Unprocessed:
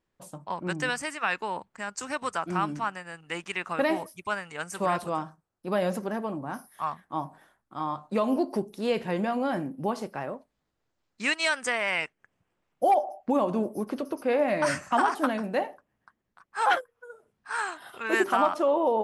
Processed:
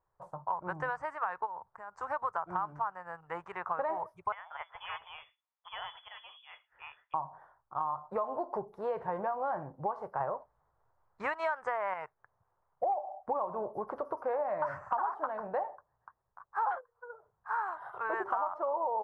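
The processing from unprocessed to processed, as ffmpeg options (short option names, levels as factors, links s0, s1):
-filter_complex "[0:a]asplit=3[s0][s1][s2];[s0]afade=t=out:st=1.45:d=0.02[s3];[s1]acompressor=threshold=0.00562:ratio=3:attack=3.2:release=140:knee=1:detection=peak,afade=t=in:st=1.45:d=0.02,afade=t=out:st=1.92:d=0.02[s4];[s2]afade=t=in:st=1.92:d=0.02[s5];[s3][s4][s5]amix=inputs=3:normalize=0,asettb=1/sr,asplit=3[s6][s7][s8];[s6]atrim=end=4.324[s9];[s7]atrim=start=4.32:end=7.14,asetpts=PTS-STARTPTS,afade=t=in:d=0.004:c=qsin,afade=t=out:st=2.816:d=0.004:c=qsin,lowpass=f=3100:t=q:w=0.5098,lowpass=f=3100:t=q:w=0.6013,lowpass=f=3100:t=q:w=0.9,lowpass=f=3100:t=q:w=2.563,afreqshift=-3600[s10];[s8]atrim=start=7.136[s11];[s9][s10]acrossfade=d=0.004:c1=hsin:c2=qsin[s12];[s12][s11]acrossfade=d=0.004:c1=qsin:c2=hsin,asettb=1/sr,asplit=3[s13][s14][s15];[s13]atrim=end=10.204[s16];[s14]atrim=start=10.2:end=11.94,asetpts=PTS-STARTPTS,afade=t=in:d=0.004:c=qsin,afade=t=out:st=1.736:d=0.004:c=qsin,acontrast=58[s17];[s15]atrim=start=11.936[s18];[s16][s17]acrossfade=d=0.004:c1=hsin:c2=qsin[s19];[s19][s18]acrossfade=d=0.004:c1=qsin:c2=hsin,acrossover=split=6800[s20][s21];[s21]acompressor=threshold=0.00141:ratio=4:attack=1:release=60[s22];[s20][s22]amix=inputs=2:normalize=0,firequalizer=gain_entry='entry(120,0);entry(240,-21);entry(410,-4);entry(940,8);entry(2600,-22);entry(4500,-26)':delay=0.05:min_phase=1,acompressor=threshold=0.0316:ratio=6"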